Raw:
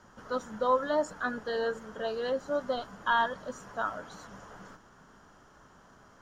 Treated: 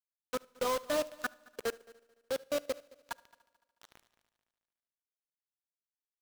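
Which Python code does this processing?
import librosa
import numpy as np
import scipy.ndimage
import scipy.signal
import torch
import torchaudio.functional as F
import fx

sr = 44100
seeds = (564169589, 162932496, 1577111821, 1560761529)

y = fx.lowpass(x, sr, hz=1200.0, slope=12, at=(1.86, 3.92))
y = fx.peak_eq(y, sr, hz=860.0, db=-12.5, octaves=0.21)
y = fx.level_steps(y, sr, step_db=15)
y = 10.0 ** (-23.0 / 20.0) * np.tanh(y / 10.0 ** (-23.0 / 20.0))
y = fx.quant_dither(y, sr, seeds[0], bits=6, dither='none')
y = fx.echo_heads(y, sr, ms=73, heads='first and third', feedback_pct=51, wet_db=-16.5)
y = fx.rev_schroeder(y, sr, rt60_s=0.93, comb_ms=38, drr_db=17.5)
y = fx.upward_expand(y, sr, threshold_db=-53.0, expansion=1.5)
y = F.gain(torch.from_numpy(y), 1.5).numpy()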